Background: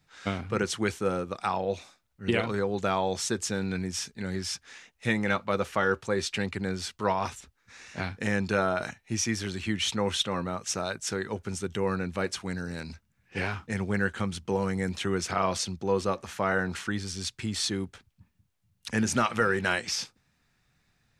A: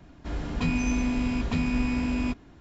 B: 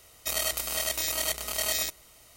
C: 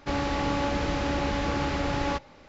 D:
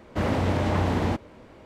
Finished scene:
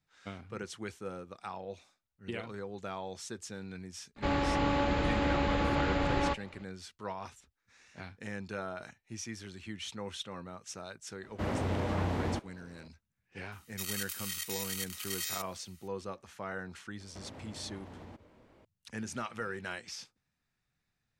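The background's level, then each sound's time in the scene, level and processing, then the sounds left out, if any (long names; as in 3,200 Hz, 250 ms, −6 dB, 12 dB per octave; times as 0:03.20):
background −13 dB
0:04.16: mix in C −2 dB + parametric band 5,700 Hz −11.5 dB 0.42 octaves
0:11.23: mix in D −8.5 dB
0:13.52: mix in B −8.5 dB + high-pass filter 1,300 Hz 24 dB per octave
0:17.00: mix in D −12.5 dB + downward compressor 10 to 1, threshold −32 dBFS
not used: A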